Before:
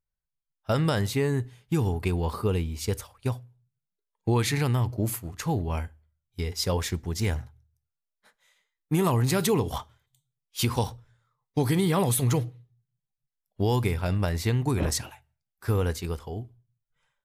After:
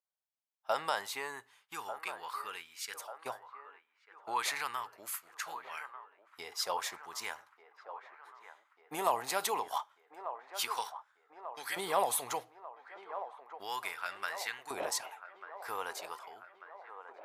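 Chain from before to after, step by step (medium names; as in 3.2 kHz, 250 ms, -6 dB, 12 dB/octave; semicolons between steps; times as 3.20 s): LFO high-pass saw up 0.34 Hz 660–1600 Hz; feedback echo behind a band-pass 1192 ms, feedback 63%, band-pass 850 Hz, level -10.5 dB; trim -6 dB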